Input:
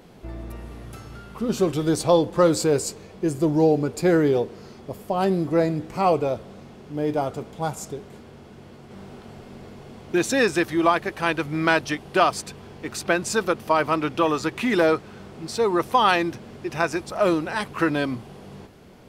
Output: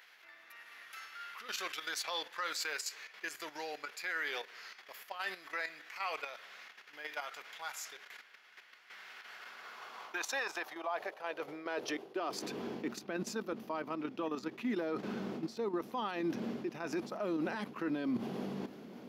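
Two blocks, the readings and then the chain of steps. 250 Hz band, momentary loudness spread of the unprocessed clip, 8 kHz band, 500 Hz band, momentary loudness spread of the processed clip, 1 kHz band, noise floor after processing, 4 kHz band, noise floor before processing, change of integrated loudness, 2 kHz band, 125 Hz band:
-15.5 dB, 20 LU, -12.5 dB, -19.0 dB, 15 LU, -17.5 dB, -60 dBFS, -10.0 dB, -45 dBFS, -17.0 dB, -12.0 dB, -22.0 dB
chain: bell 8600 Hz -14 dB 0.38 oct; level quantiser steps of 11 dB; high-pass sweep 1800 Hz -> 230 Hz, 9.15–12.93; reverse; compressor 12:1, threshold -32 dBFS, peak gain reduction 18.5 dB; reverse; limiter -29.5 dBFS, peak gain reduction 10 dB; gain +2 dB

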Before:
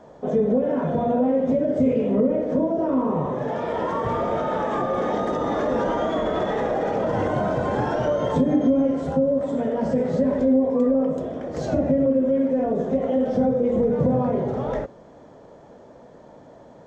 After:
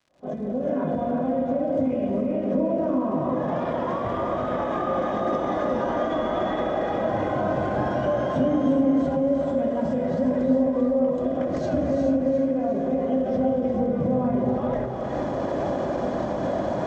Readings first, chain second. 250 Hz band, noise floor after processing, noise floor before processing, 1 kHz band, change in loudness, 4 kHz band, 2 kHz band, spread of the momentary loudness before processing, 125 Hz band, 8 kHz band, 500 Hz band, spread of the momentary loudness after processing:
-1.5 dB, -29 dBFS, -47 dBFS, -0.5 dB, -2.0 dB, -1.5 dB, -0.5 dB, 6 LU, -2.0 dB, n/a, -2.0 dB, 5 LU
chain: opening faded in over 2.80 s; recorder AGC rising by 58 dB/s; bell 150 Hz -3 dB 0.89 oct; in parallel at -1 dB: limiter -22.5 dBFS, peak gain reduction 11.5 dB; on the sum: crackle 120/s -39 dBFS; air absorption 78 m; notch comb 450 Hz; on a send: split-band echo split 480 Hz, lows 0.179 s, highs 0.356 s, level -9 dB; on the sum: non-linear reverb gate 0.46 s rising, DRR 4 dB; ending taper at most 110 dB/s; gain -5 dB

